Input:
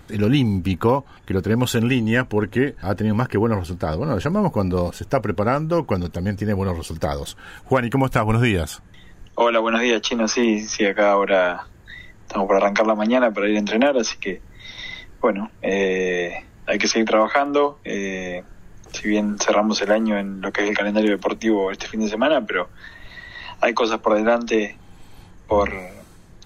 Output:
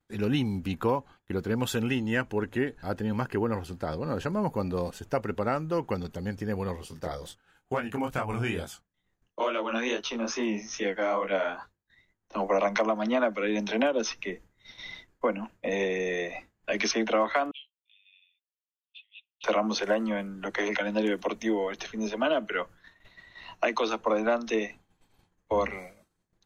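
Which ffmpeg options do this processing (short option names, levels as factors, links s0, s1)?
-filter_complex "[0:a]asplit=3[s0][s1][s2];[s0]afade=t=out:st=6.75:d=0.02[s3];[s1]flanger=delay=20:depth=6.6:speed=2.3,afade=t=in:st=6.75:d=0.02,afade=t=out:st=12.34:d=0.02[s4];[s2]afade=t=in:st=12.34:d=0.02[s5];[s3][s4][s5]amix=inputs=3:normalize=0,asettb=1/sr,asplit=3[s6][s7][s8];[s6]atrim=end=17.514[s9];[s7]atrim=start=17.51:end=19.44,asetpts=PTS-STARTPTS,afade=t=in:d=0.004:c=qsin,afade=t=out:st=1.926:d=0.004:c=qsin,asuperpass=centerf=3100:order=8:qfactor=2.7[s10];[s8]atrim=start=19.436[s11];[s9][s10]acrossfade=d=0.004:c1=hsin:c2=qsin[s12];[s12][s11]acrossfade=d=0.004:c1=qsin:c2=hsin,agate=range=0.0224:threshold=0.0251:ratio=3:detection=peak,lowshelf=f=110:g=-7,volume=0.398"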